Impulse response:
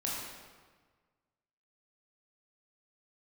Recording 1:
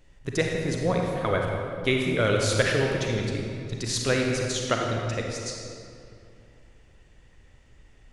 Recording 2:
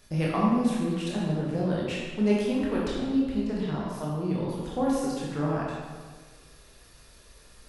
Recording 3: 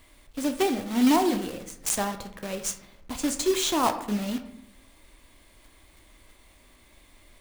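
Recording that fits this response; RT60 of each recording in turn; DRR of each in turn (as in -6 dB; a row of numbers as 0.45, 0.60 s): 2; 2.5, 1.5, 0.75 s; 0.0, -5.5, 6.5 dB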